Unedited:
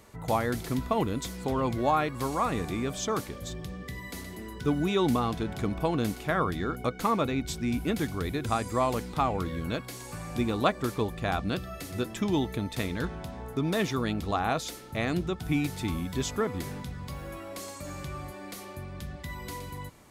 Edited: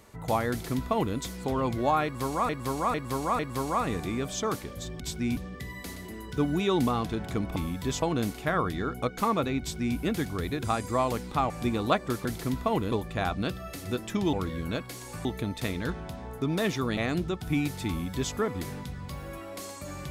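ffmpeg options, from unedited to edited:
-filter_complex "[0:a]asplit=14[a][b][c][d][e][f][g][h][i][j][k][l][m][n];[a]atrim=end=2.492[o];[b]atrim=start=2.038:end=2.492[p];[c]atrim=start=2.038:end=2.492[q];[d]atrim=start=2.038:end=3.652[r];[e]atrim=start=7.418:end=7.792[s];[f]atrim=start=3.648:end=5.842[t];[g]atrim=start=15.868:end=16.332[u];[h]atrim=start=5.838:end=9.322[v];[i]atrim=start=10.238:end=10.992[w];[j]atrim=start=0.498:end=1.172[x];[k]atrim=start=10.988:end=12.402[y];[l]atrim=start=9.318:end=10.242[z];[m]atrim=start=12.398:end=14.122[aa];[n]atrim=start=14.958[ab];[o][p]acrossfade=d=0.004:c1=hsin:c2=hsin[ac];[ac][q]acrossfade=d=0.004:c1=hsin:c2=hsin[ad];[ad][r]acrossfade=d=0.004:c1=hsin:c2=hsin[ae];[ae][s]acrossfade=d=0.004:c1=hsin:c2=hsin[af];[af][t]acrossfade=d=0.004:c1=hsin:c2=hsin[ag];[ag][u]acrossfade=d=0.004:c1=hsin:c2=hsin[ah];[ah][v]acrossfade=d=0.004:c1=hsin:c2=hsin[ai];[ai][w]acrossfade=d=0.004:c1=hsin:c2=hsin[aj];[aj][x]acrossfade=d=0.004:c1=hsin:c2=hsin[ak];[ak][y]acrossfade=d=0.004:c1=hsin:c2=hsin[al];[al][z]acrossfade=d=0.004:c1=hsin:c2=hsin[am];[am][aa]acrossfade=d=0.004:c1=hsin:c2=hsin[an];[an][ab]acrossfade=d=0.004:c1=hsin:c2=hsin"

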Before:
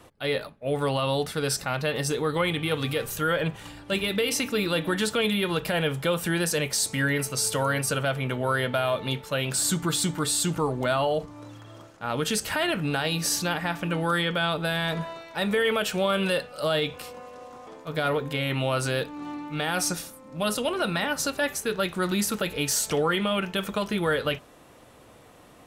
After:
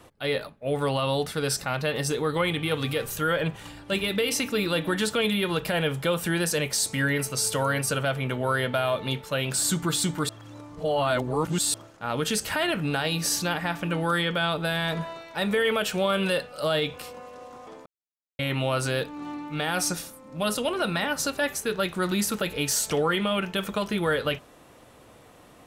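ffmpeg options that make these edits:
-filter_complex "[0:a]asplit=5[a][b][c][d][e];[a]atrim=end=10.292[f];[b]atrim=start=10.288:end=11.742,asetpts=PTS-STARTPTS,areverse[g];[c]atrim=start=11.738:end=17.86,asetpts=PTS-STARTPTS,afade=t=out:st=6.118:d=0.004:c=hsin[h];[d]atrim=start=17.86:end=18.39,asetpts=PTS-STARTPTS,volume=0[i];[e]atrim=start=18.39,asetpts=PTS-STARTPTS,afade=t=in:d=0.004:c=hsin[j];[f][g]acrossfade=d=0.004:c1=hsin:c2=hsin[k];[h][i][j]concat=n=3:v=0:a=1[l];[k][l]acrossfade=d=0.004:c1=hsin:c2=hsin"

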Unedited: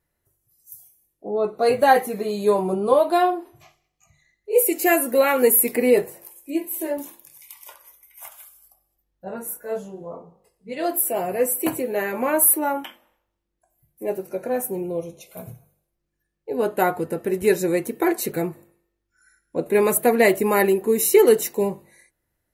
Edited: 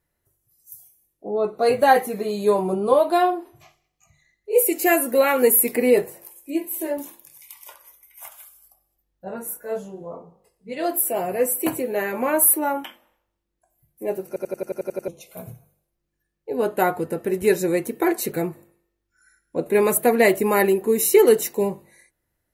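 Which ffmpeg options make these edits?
-filter_complex "[0:a]asplit=10[a][b][c][d][e][f][g][h][i][j];[a]atrim=end=14.362[k];[b]atrim=start=14.268:end=14.362[l];[c]atrim=start=14.268:end=14.362[m];[d]atrim=start=14.268:end=14.362[n];[e]atrim=start=14.268:end=14.362[o];[f]atrim=start=14.268:end=14.362[p];[g]atrim=start=14.268:end=14.362[q];[h]atrim=start=14.268:end=14.362[r];[i]atrim=start=14.268:end=14.362[s];[j]atrim=start=15.078[t];[k][l]acrossfade=d=0.004:c1=hsin:c2=hsin[u];[u][m]acrossfade=d=0.004:c1=hsin:c2=hsin[v];[v][n]acrossfade=d=0.004:c1=hsin:c2=hsin[w];[w][o]acrossfade=d=0.004:c1=hsin:c2=hsin[x];[x][p]acrossfade=d=0.004:c1=hsin:c2=hsin[y];[y][q]acrossfade=d=0.004:c1=hsin:c2=hsin[z];[z][r]acrossfade=d=0.004:c1=hsin:c2=hsin[aa];[aa][s]acrossfade=d=0.004:c1=hsin:c2=hsin[ab];[ab][t]acrossfade=d=0.004:c1=hsin:c2=hsin"

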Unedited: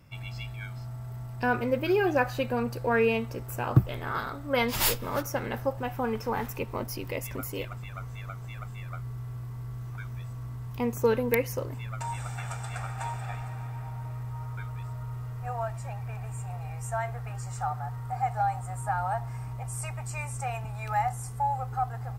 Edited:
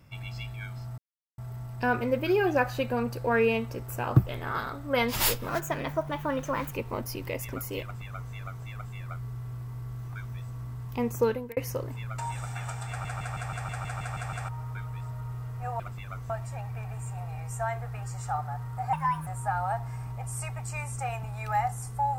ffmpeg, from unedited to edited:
-filter_complex "[0:a]asplit=19[a][b][c][d][e][f][g][h][i][j][k][l][m][n][o][p][q][r][s];[a]atrim=end=0.98,asetpts=PTS-STARTPTS,afade=t=out:st=0.976:d=0.004:c=hsin,apad=pad_dur=0.4[t];[b]atrim=start=0.98:end=5.084,asetpts=PTS-STARTPTS,afade=t=in:d=0.004:c=hsin[u];[c]atrim=start=5.08:end=6.54,asetpts=PTS-STARTPTS,asetrate=52038,aresample=44100,atrim=end_sample=54564,asetpts=PTS-STARTPTS[v];[d]atrim=start=6.536:end=11.39,asetpts=PTS-STARTPTS,afade=t=out:st=4.494:d=0.36[w];[e]atrim=start=11.39:end=12.872,asetpts=PTS-STARTPTS,afade=t=in:d=0.004:c=hsin[x];[f]atrim=start=12.708:end=12.872[y];[g]atrim=start=12.708:end=12.872[z];[h]atrim=start=12.708:end=12.872[aa];[i]atrim=start=12.708:end=12.872[ab];[j]atrim=start=12.708:end=12.872[ac];[k]atrim=start=12.708:end=12.872[ad];[l]atrim=start=12.708:end=12.872[ae];[m]atrim=start=12.708:end=12.872[af];[n]atrim=start=12.708:end=12.872[ag];[o]atrim=start=14.308:end=15.622[ah];[p]atrim=start=7.648:end=8.152[ai];[q]atrim=start=15.618:end=18.254[aj];[r]atrim=start=18.25:end=18.68,asetpts=PTS-STARTPTS,asetrate=55566,aresample=44100[ak];[s]atrim=start=18.676[al];[t][u]concat=n=2:v=0:a=1[am];[am][v]acrossfade=d=0.004:c1=hsin:c2=hsin[an];[w][x]concat=n=2:v=0:a=1[ao];[an][ao]acrossfade=d=0.004:c1=hsin:c2=hsin[ap];[ap][y]acrossfade=d=0.004:c1=hsin:c2=hsin[aq];[aq][z]acrossfade=d=0.004:c1=hsin:c2=hsin[ar];[ar][aa]acrossfade=d=0.004:c1=hsin:c2=hsin[as];[as][ab]acrossfade=d=0.004:c1=hsin:c2=hsin[at];[at][ac]acrossfade=d=0.004:c1=hsin:c2=hsin[au];[au][ad]acrossfade=d=0.004:c1=hsin:c2=hsin[av];[av][ae]acrossfade=d=0.004:c1=hsin:c2=hsin[aw];[aw][af]acrossfade=d=0.004:c1=hsin:c2=hsin[ax];[ax][ag]acrossfade=d=0.004:c1=hsin:c2=hsin[ay];[ay][ah]acrossfade=d=0.004:c1=hsin:c2=hsin[az];[az][ai]acrossfade=d=0.004:c1=hsin:c2=hsin[ba];[ba][aj]acrossfade=d=0.004:c1=hsin:c2=hsin[bb];[bb][ak]acrossfade=d=0.004:c1=hsin:c2=hsin[bc];[bc][al]acrossfade=d=0.004:c1=hsin:c2=hsin"

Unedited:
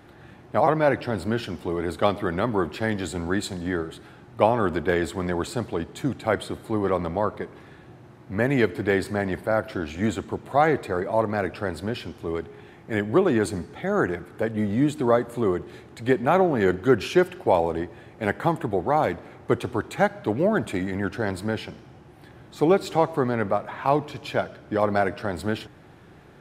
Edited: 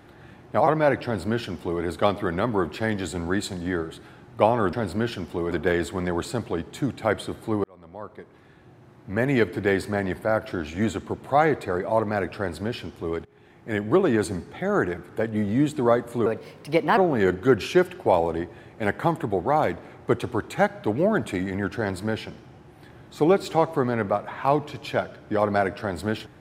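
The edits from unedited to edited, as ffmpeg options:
-filter_complex "[0:a]asplit=7[a][b][c][d][e][f][g];[a]atrim=end=4.732[h];[b]atrim=start=1.038:end=1.822[i];[c]atrim=start=4.728:end=6.86,asetpts=PTS-STARTPTS,afade=t=out:st=2.128:d=0.004:c=hsin[j];[d]atrim=start=6.86:end=12.47,asetpts=PTS-STARTPTS,afade=t=in:d=1.72,afade=t=out:st=5.606:d=0.004:c=hsin:silence=0.112202[k];[e]atrim=start=12.47:end=15.484,asetpts=PTS-STARTPTS,afade=t=in:d=0.8:c=qsin:silence=0.112202[l];[f]atrim=start=15.48:end=16.38,asetpts=PTS-STARTPTS,asetrate=55566,aresample=44100[m];[g]atrim=start=16.376[n];[h][i]acrossfade=d=0.004:c1=hsin:c2=hsin[o];[j][k][l]concat=n=3:v=0:a=1[p];[o][p]acrossfade=d=0.004:c1=hsin:c2=hsin[q];[q][m]acrossfade=d=0.004:c1=hsin:c2=hsin[r];[r][n]acrossfade=d=0.004:c1=hsin:c2=hsin"

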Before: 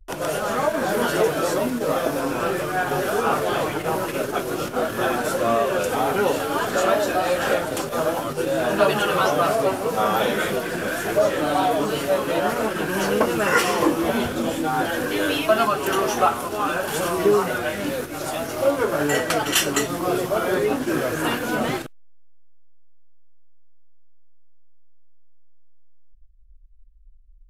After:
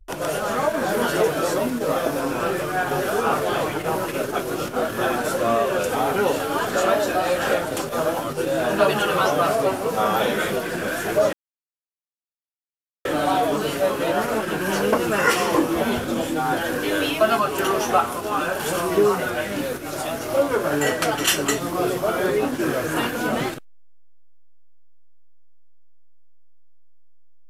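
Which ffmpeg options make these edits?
-filter_complex "[0:a]asplit=2[a][b];[a]atrim=end=11.33,asetpts=PTS-STARTPTS,afade=t=out:st=11.326:d=0.004:c=hsin,apad=pad_dur=1.72[c];[b]atrim=start=11.33,asetpts=PTS-STARTPTS,afade=t=in:d=0.004:c=hsin[d];[c][d]concat=n=2:v=0:a=1"

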